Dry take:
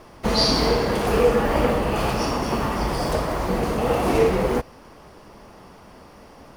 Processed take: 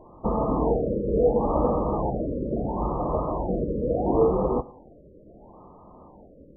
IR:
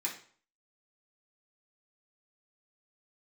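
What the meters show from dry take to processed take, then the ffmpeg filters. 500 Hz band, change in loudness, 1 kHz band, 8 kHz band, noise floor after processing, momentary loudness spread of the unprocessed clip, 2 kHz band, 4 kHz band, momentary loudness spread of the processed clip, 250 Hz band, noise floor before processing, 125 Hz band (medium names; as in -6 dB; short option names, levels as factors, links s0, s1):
-2.5 dB, -3.5 dB, -4.5 dB, under -40 dB, -51 dBFS, 6 LU, under -40 dB, under -40 dB, 7 LU, -2.0 dB, -47 dBFS, -3.0 dB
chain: -filter_complex "[0:a]asuperstop=centerf=1500:order=12:qfactor=3,asplit=2[s0][s1];[1:a]atrim=start_sample=2205[s2];[s1][s2]afir=irnorm=-1:irlink=0,volume=0.237[s3];[s0][s3]amix=inputs=2:normalize=0,afftfilt=real='re*lt(b*sr/1024,590*pow(1700/590,0.5+0.5*sin(2*PI*0.73*pts/sr)))':imag='im*lt(b*sr/1024,590*pow(1700/590,0.5+0.5*sin(2*PI*0.73*pts/sr)))':win_size=1024:overlap=0.75,volume=0.75"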